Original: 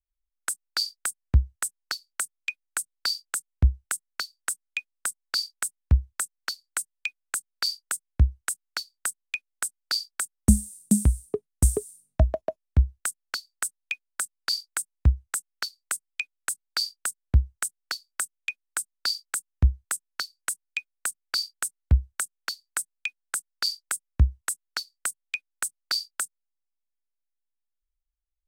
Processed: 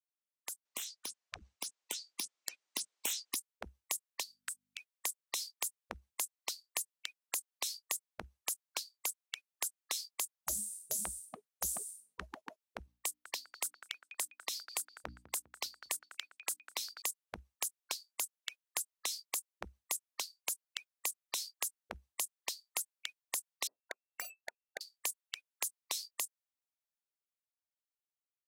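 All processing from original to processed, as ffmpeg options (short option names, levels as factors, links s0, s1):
-filter_complex "[0:a]asettb=1/sr,asplit=3[s0][s1][s2];[s0]atrim=end=0.654[s3];[s1]atrim=start=0.65:end=3.36,asetpts=PTS-STARTPTS,afade=t=in:d=0.004:c=qsin,afade=t=out:st=2.706:d=0.004:c=qsin,lowpass=f=7400:w=0.5412,lowpass=f=7400:w=1.3066,aeval=exprs='0.355*sin(PI/2*3.16*val(0)/0.355)':c=same[s4];[s2]atrim=start=3.356[s5];[s3][s4]acrossfade=d=0.004:c1=hsin:c2=qsin[s6];[s6][s5]acrossfade=d=0.004:c1=qsin:c2=hsin,asettb=1/sr,asplit=3[s7][s8][s9];[s7]atrim=end=4.234[s10];[s8]atrim=start=4.23:end=4.78,asetpts=PTS-STARTPTS,afade=t=in:d=0.004:c=qsin,afade=t=out:st=0.546:d=0.004:c=qsin,highpass=1200,acompressor=threshold=0.00501:ratio=2:attack=3.2:release=140:knee=1:detection=peak,aeval=exprs='val(0)+0.000355*(sin(2*PI*50*n/s)+sin(2*PI*2*50*n/s)/2+sin(2*PI*3*50*n/s)/3+sin(2*PI*4*50*n/s)/4+sin(2*PI*5*50*n/s)/5)':c=same[s11];[s9]atrim=start=4.776[s12];[s10][s11]acrossfade=d=0.004:c1=hsin:c2=qsin[s13];[s13][s12]acrossfade=d=0.004:c1=qsin:c2=hsin,asettb=1/sr,asplit=3[s14][s15][s16];[s14]atrim=end=12.864[s17];[s15]atrim=start=12.86:end=17.02,asetpts=PTS-STARTPTS,afade=t=in:d=0.004:c=qsin,afade=t=out:st=4.156:d=0.004:c=qsin,equalizer=f=8800:w=1.1:g=-5.5,bandreject=f=60:t=h:w=6,bandreject=f=120:t=h:w=6,bandreject=f=180:t=h:w=6,bandreject=f=240:t=h:w=6,bandreject=f=300:t=h:w=6,asplit=2[s18][s19];[s19]adelay=201,lowpass=f=3200:p=1,volume=0.106,asplit=2[s20][s21];[s21]adelay=201,lowpass=f=3200:p=1,volume=0.46,asplit=2[s22][s23];[s23]adelay=201,lowpass=f=3200:p=1,volume=0.46,asplit=2[s24][s25];[s25]adelay=201,lowpass=f=3200:p=1,volume=0.46[s26];[s18][s20][s22][s24][s26]amix=inputs=5:normalize=0,atrim=end_sample=183456[s27];[s16]atrim=start=17.016[s28];[s17][s27]acrossfade=d=0.004:c1=hsin:c2=qsin[s29];[s29][s28]acrossfade=d=0.004:c1=qsin:c2=hsin,asettb=1/sr,asplit=3[s30][s31][s32];[s30]atrim=end=23.674[s33];[s31]atrim=start=23.67:end=24.81,asetpts=PTS-STARTPTS,afade=t=in:d=0.004:c=qsin,afade=t=out:st=1.136:d=0.004:c=qsin,lowpass=f=2300:t=q:w=0.5098,lowpass=f=2300:t=q:w=0.6013,lowpass=f=2300:t=q:w=0.9,lowpass=f=2300:t=q:w=2.563,afreqshift=-2700,adynamicsmooth=sensitivity=6:basefreq=610[s34];[s32]atrim=start=24.806[s35];[s33][s34]acrossfade=d=0.004:c1=hsin:c2=qsin[s36];[s36][s35]acrossfade=d=0.004:c1=qsin:c2=hsin,highpass=400,afftfilt=real='re*lt(hypot(re,im),0.0562)':imag='im*lt(hypot(re,im),0.0562)':win_size=1024:overlap=0.75,dynaudnorm=f=470:g=9:m=2.11,volume=0.473"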